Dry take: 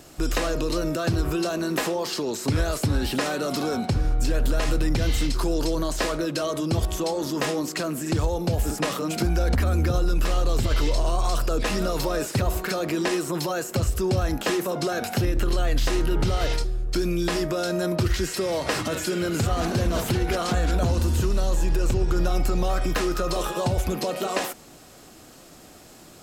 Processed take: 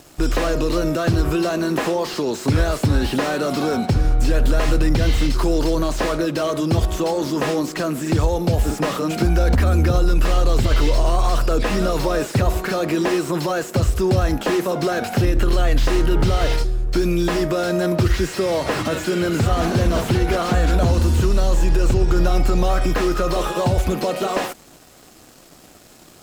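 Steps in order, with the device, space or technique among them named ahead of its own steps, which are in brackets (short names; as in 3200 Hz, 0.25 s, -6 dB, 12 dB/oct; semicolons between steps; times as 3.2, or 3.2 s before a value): early transistor amplifier (crossover distortion -51.5 dBFS; slew limiter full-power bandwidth 74 Hz); gain +6 dB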